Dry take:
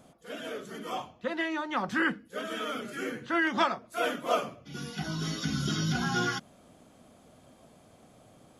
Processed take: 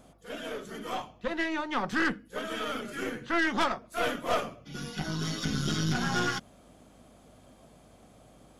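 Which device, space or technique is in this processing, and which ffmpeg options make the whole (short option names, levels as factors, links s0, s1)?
valve amplifier with mains hum: -af "aeval=exprs='(tanh(17.8*val(0)+0.65)-tanh(0.65))/17.8':c=same,aeval=exprs='val(0)+0.000447*(sin(2*PI*50*n/s)+sin(2*PI*2*50*n/s)/2+sin(2*PI*3*50*n/s)/3+sin(2*PI*4*50*n/s)/4+sin(2*PI*5*50*n/s)/5)':c=same,volume=1.58"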